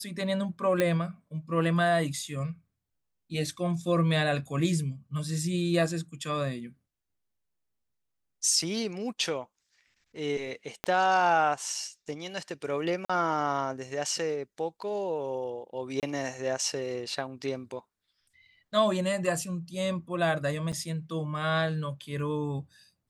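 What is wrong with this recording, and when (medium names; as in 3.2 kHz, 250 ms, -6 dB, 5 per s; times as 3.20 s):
0.80 s: pop -12 dBFS
10.84 s: pop -15 dBFS
13.05–13.10 s: dropout 45 ms
16.00–16.03 s: dropout 28 ms
20.72–20.73 s: dropout 7.7 ms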